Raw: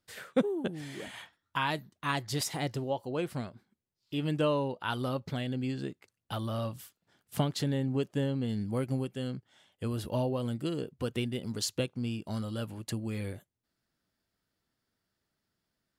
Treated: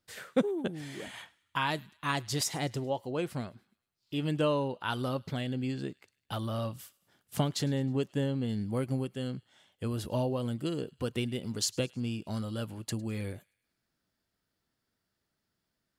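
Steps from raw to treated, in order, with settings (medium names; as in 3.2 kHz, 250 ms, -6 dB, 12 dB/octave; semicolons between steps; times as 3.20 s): dynamic bell 6.6 kHz, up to +4 dB, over -54 dBFS, Q 1.5; on a send: feedback echo behind a high-pass 105 ms, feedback 51%, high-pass 1.7 kHz, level -23 dB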